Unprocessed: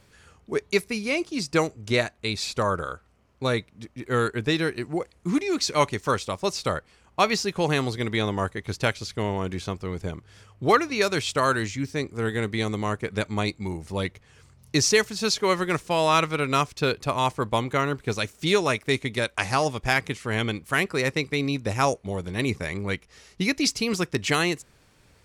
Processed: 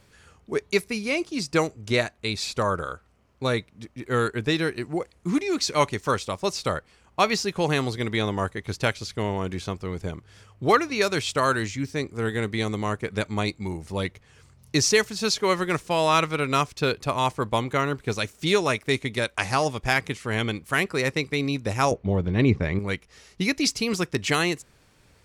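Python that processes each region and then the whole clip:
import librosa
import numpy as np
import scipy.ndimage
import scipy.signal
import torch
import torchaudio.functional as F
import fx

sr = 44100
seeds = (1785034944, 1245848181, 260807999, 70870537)

y = fx.chain(x, sr, fx.lowpass(hz=3600.0, slope=12),
    fx.low_shelf(hz=460.0, db=9.0), at=(21.91, 22.79))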